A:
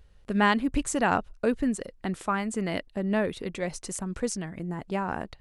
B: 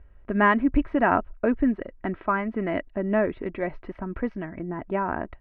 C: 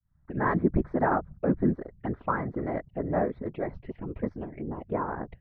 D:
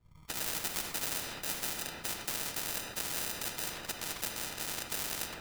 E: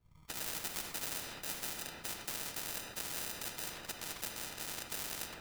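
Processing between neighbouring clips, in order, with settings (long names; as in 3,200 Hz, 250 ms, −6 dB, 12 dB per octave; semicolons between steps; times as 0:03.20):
inverse Chebyshev low-pass filter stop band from 6,800 Hz, stop band 60 dB; comb filter 3.1 ms, depth 43%; level +3 dB
fade in at the beginning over 0.60 s; random phases in short frames; phaser swept by the level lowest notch 450 Hz, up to 2,800 Hz, full sweep at −25.5 dBFS; level −3 dB
decimation without filtering 40×; rectangular room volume 560 cubic metres, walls mixed, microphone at 0.61 metres; every bin compressed towards the loudest bin 10 to 1; level −2 dB
log-companded quantiser 8 bits; level −4.5 dB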